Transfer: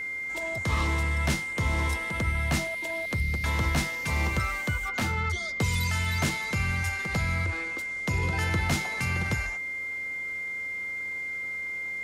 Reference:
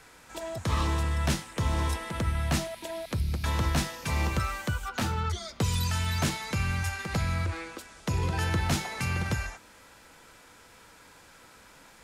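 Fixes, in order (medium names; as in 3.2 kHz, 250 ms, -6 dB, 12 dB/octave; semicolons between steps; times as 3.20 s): de-hum 91.5 Hz, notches 6; band-stop 2.1 kHz, Q 30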